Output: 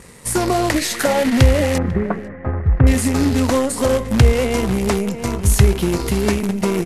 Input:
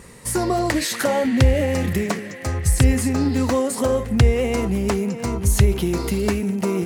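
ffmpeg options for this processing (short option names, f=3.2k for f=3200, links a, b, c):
-filter_complex "[0:a]asplit=2[a][b];[b]acrusher=bits=4:dc=4:mix=0:aa=0.000001,volume=-4.5dB[c];[a][c]amix=inputs=2:normalize=0,asettb=1/sr,asplit=3[d][e][f];[d]atrim=end=1.784[g];[e]atrim=start=1.78:end=2.87,asetpts=PTS-STARTPTS,afade=t=in:d=0.004:c=qsin,afade=t=out:st=1.086:d=0.004:c=qsin,lowpass=f=1.6k:w=0.5412,lowpass=f=1.6k:w=1.3066[h];[f]atrim=start=2.866[i];[g][h]acrossfade=d=0.004:c1=hsin:c2=qsin[j];[j][i]acrossfade=d=0.004:c1=qsin:c2=hsin,asplit=2[k][l];[l]adelay=495.6,volume=-19dB,highshelf=f=4k:g=-11.2[m];[k][m]amix=inputs=2:normalize=0,volume=-1dB" -ar 32000 -c:a libvorbis -b:a 48k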